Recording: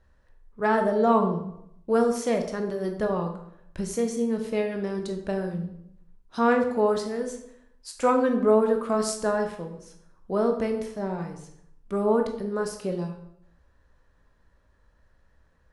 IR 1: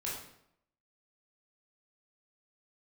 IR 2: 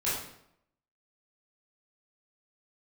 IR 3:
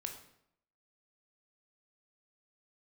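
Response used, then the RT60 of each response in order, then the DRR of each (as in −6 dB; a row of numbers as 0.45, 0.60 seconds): 3; 0.75, 0.75, 0.75 seconds; −6.0, −10.0, 3.5 decibels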